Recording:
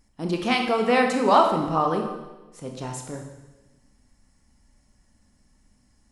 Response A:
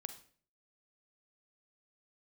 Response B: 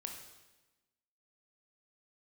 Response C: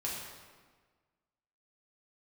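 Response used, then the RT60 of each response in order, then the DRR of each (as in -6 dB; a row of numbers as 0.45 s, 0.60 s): B; 0.50 s, 1.1 s, 1.5 s; 9.0 dB, 2.0 dB, -5.5 dB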